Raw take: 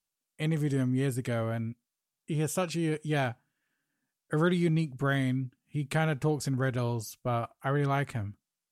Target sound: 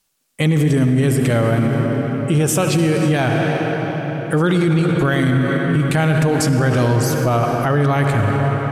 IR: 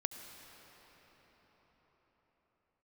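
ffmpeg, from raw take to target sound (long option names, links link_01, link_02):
-filter_complex "[1:a]atrim=start_sample=2205,asetrate=48510,aresample=44100[link_01];[0:a][link_01]afir=irnorm=-1:irlink=0,alimiter=level_in=28dB:limit=-1dB:release=50:level=0:latency=1,volume=-7.5dB"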